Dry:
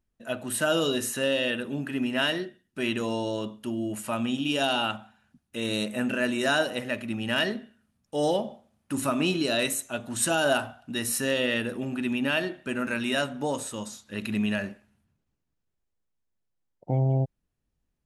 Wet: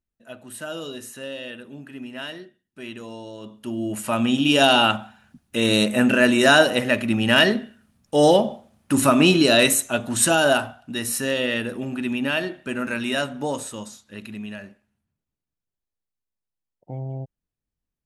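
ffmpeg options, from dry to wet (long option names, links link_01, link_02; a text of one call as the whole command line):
ffmpeg -i in.wav -af "volume=10dB,afade=type=in:start_time=3.39:duration=0.32:silence=0.316228,afade=type=in:start_time=3.71:duration=0.93:silence=0.398107,afade=type=out:start_time=9.72:duration=1.12:silence=0.421697,afade=type=out:start_time=13.56:duration=0.81:silence=0.316228" out.wav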